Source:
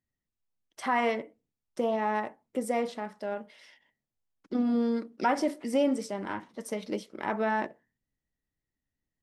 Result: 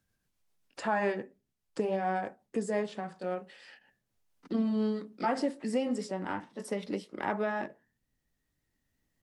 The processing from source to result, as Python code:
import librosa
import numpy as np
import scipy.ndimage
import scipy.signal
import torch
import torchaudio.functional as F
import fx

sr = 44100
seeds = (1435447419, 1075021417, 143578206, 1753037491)

y = fx.pitch_glide(x, sr, semitones=-3.0, runs='ending unshifted')
y = fx.band_squash(y, sr, depth_pct=40)
y = y * librosa.db_to_amplitude(-1.0)